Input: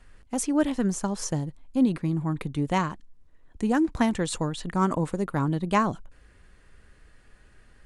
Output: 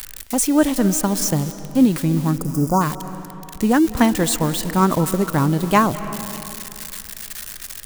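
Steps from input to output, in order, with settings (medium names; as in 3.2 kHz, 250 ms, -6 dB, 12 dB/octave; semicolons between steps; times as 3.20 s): zero-crossing glitches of -26.5 dBFS; spectral selection erased 2.36–2.81 s, 1.5–4.7 kHz; reverberation RT60 2.7 s, pre-delay 162 ms, DRR 12.5 dB; trim +7.5 dB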